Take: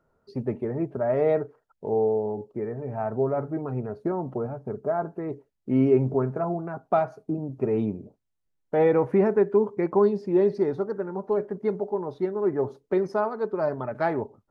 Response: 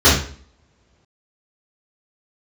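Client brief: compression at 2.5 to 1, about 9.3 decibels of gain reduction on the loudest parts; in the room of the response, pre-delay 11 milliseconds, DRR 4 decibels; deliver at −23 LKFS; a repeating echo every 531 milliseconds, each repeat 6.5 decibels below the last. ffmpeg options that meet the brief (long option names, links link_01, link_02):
-filter_complex "[0:a]acompressor=threshold=-30dB:ratio=2.5,aecho=1:1:531|1062|1593|2124|2655|3186:0.473|0.222|0.105|0.0491|0.0231|0.0109,asplit=2[link_01][link_02];[1:a]atrim=start_sample=2205,adelay=11[link_03];[link_02][link_03]afir=irnorm=-1:irlink=0,volume=-30dB[link_04];[link_01][link_04]amix=inputs=2:normalize=0,volume=5dB"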